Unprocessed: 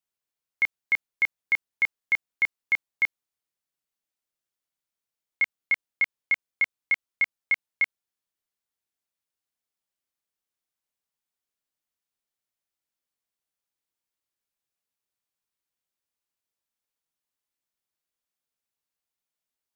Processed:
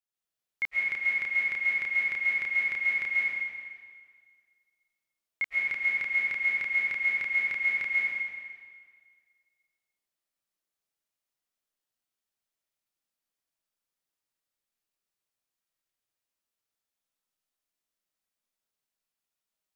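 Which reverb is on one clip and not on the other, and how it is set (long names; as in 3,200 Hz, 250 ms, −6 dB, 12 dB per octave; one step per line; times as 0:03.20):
comb and all-pass reverb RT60 1.8 s, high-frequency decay 0.95×, pre-delay 95 ms, DRR −6.5 dB
level −7 dB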